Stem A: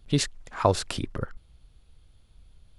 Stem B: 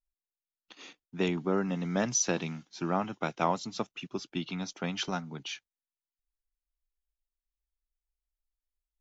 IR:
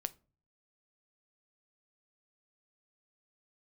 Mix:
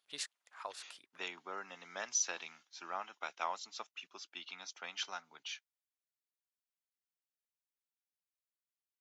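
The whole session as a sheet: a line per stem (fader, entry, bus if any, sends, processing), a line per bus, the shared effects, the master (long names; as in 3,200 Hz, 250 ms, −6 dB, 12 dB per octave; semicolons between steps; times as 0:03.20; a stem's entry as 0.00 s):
−10.0 dB, 0.00 s, no send, automatic ducking −15 dB, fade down 1.60 s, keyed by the second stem
−5.0 dB, 0.00 s, no send, no processing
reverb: not used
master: high-pass filter 1,000 Hz 12 dB per octave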